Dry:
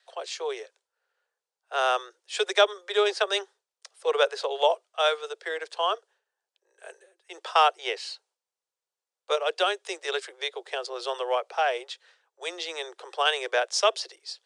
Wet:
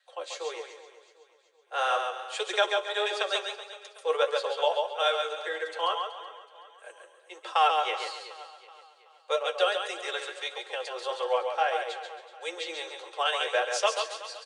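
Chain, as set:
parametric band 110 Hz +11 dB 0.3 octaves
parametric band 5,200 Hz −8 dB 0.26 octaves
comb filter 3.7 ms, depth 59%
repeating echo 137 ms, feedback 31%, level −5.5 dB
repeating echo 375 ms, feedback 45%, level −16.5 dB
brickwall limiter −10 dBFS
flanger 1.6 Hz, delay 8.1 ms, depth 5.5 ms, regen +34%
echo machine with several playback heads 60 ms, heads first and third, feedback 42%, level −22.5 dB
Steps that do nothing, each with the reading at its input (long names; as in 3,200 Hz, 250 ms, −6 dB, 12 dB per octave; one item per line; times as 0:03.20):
parametric band 110 Hz: nothing at its input below 320 Hz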